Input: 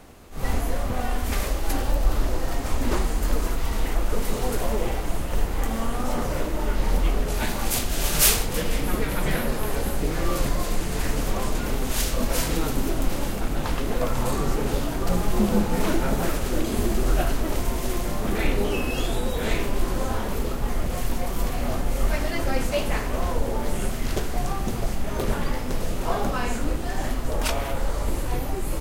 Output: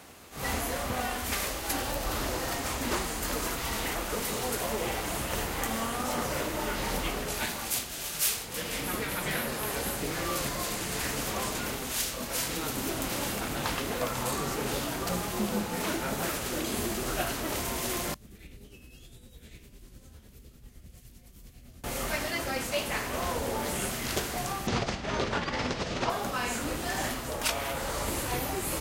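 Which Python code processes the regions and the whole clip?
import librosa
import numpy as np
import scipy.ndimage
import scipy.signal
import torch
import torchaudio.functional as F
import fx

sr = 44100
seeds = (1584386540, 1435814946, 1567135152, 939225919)

y = fx.chain(x, sr, fx.tone_stack(knobs='10-0-1'),
    fx.tremolo(hz=9.9, depth=0.51), at=(18.14, 21.84))
y = fx.chain(y, sr, fx.lowpass(hz=5700.0, slope=24),
    fx.env_flatten(amount_pct=100), at=(24.67, 26.1))
y = scipy.signal.sosfilt(scipy.signal.butter(2, 75.0, 'highpass', fs=sr, output='sos'), y)
y = fx.tilt_shelf(y, sr, db=-4.5, hz=930.0)
y = fx.rider(y, sr, range_db=10, speed_s=0.5)
y = y * librosa.db_to_amplitude(-4.5)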